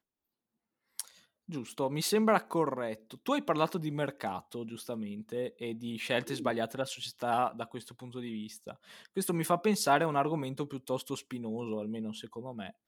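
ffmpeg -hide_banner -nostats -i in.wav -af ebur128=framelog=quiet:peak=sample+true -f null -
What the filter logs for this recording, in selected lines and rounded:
Integrated loudness:
  I:         -33.5 LUFS
  Threshold: -43.8 LUFS
Loudness range:
  LRA:         3.9 LU
  Threshold: -53.5 LUFS
  LRA low:   -35.8 LUFS
  LRA high:  -31.9 LUFS
Sample peak:
  Peak:      -11.5 dBFS
True peak:
  Peak:      -11.5 dBFS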